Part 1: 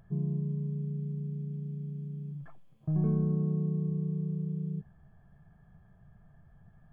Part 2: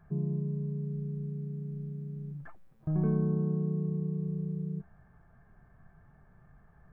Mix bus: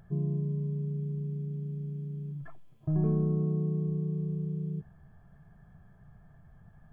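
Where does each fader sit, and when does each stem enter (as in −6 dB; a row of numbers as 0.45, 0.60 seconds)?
+2.0, −7.5 decibels; 0.00, 0.00 seconds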